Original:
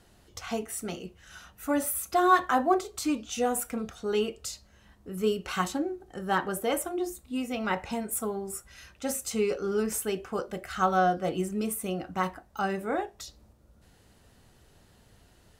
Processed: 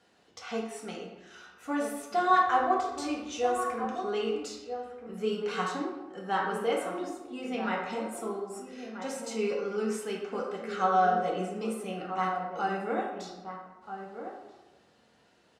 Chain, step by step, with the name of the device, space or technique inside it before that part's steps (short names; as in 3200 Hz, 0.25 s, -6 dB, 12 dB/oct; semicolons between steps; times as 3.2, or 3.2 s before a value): supermarket ceiling speaker (BPF 240–6100 Hz; reverb RT60 1.1 s, pre-delay 3 ms, DRR -2 dB); 2.46–3.85 resonant low shelf 130 Hz +10.5 dB, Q 3; outdoor echo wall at 220 m, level -8 dB; gain -5 dB